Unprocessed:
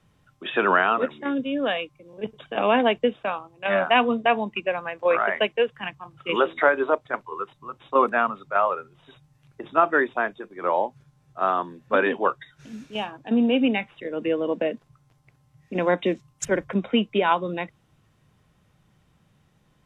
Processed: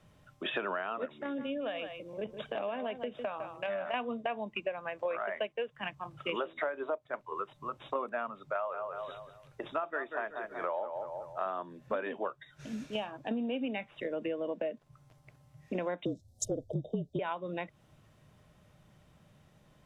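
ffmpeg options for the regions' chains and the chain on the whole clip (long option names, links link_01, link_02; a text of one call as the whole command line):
ffmpeg -i in.wav -filter_complex "[0:a]asettb=1/sr,asplit=3[link_01][link_02][link_03];[link_01]atrim=end=1.064[link_04];[link_02]atrim=start=1.06:end=3.94,asetpts=PTS-STARTPTS,afade=type=in:duration=0.004:curve=qsin,afade=type=out:start_time=2.876:duration=0.004:curve=qsin,acompressor=threshold=-32dB:ratio=2.5:attack=3.2:release=140:knee=1:detection=peak,aecho=1:1:155:0.282,atrim=end_sample=127008[link_05];[link_03]atrim=start=3.936[link_06];[link_04][link_05]acrossfade=duration=0.004:curve1=hsin:curve2=qsin[link_07];[link_07][link_06]acrossfade=duration=0.004:curve1=qsin:curve2=hsin,asettb=1/sr,asplit=3[link_08][link_09][link_10];[link_08]atrim=end=8.544[link_11];[link_09]atrim=start=8.54:end=11.46,asetpts=PTS-STARTPTS,afade=type=in:duration=0.004:curve=qsin,afade=type=out:start_time=2.916:duration=0.004:curve=qsin,equalizer=frequency=220:width_type=o:width=1.8:gain=-7.5,asplit=2[link_12][link_13];[link_13]adelay=188,lowpass=frequency=2300:poles=1,volume=-9.5dB,asplit=2[link_14][link_15];[link_15]adelay=188,lowpass=frequency=2300:poles=1,volume=0.35,asplit=2[link_16][link_17];[link_17]adelay=188,lowpass=frequency=2300:poles=1,volume=0.35,asplit=2[link_18][link_19];[link_19]adelay=188,lowpass=frequency=2300:poles=1,volume=0.35[link_20];[link_12][link_14][link_16][link_18][link_20]amix=inputs=5:normalize=0,atrim=end_sample=128772[link_21];[link_10]atrim=start=11.456[link_22];[link_11][link_21]acrossfade=duration=0.004:curve1=hsin:curve2=qsin[link_23];[link_23][link_22]acrossfade=duration=0.004:curve1=qsin:curve2=hsin,asettb=1/sr,asplit=3[link_24][link_25][link_26];[link_24]atrim=end=16.054[link_27];[link_25]atrim=start=16.05:end=17.19,asetpts=PTS-STARTPTS,afade=type=in:duration=0.004:curve=qsin,afade=type=out:start_time=1.136:duration=0.004:curve=qsin,asuperstop=centerf=1700:order=12:qfactor=0.57,acontrast=26,afreqshift=-44[link_28];[link_26]atrim=start=17.186[link_29];[link_27][link_28]acrossfade=duration=0.004:curve1=hsin:curve2=qsin[link_30];[link_30][link_29]acrossfade=duration=0.004:curve1=qsin:curve2=hsin,equalizer=frequency=610:width_type=o:width=0.24:gain=8.5,acompressor=threshold=-33dB:ratio=6" out.wav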